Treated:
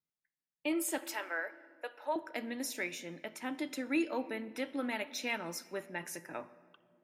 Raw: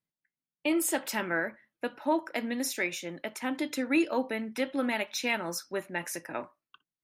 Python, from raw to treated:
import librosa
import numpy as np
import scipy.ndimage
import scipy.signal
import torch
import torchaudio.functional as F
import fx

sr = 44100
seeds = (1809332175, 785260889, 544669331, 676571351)

y = fx.highpass(x, sr, hz=470.0, slope=24, at=(0.98, 2.16))
y = fx.room_shoebox(y, sr, seeds[0], volume_m3=3300.0, walls='mixed', distance_m=0.42)
y = F.gain(torch.from_numpy(y), -6.5).numpy()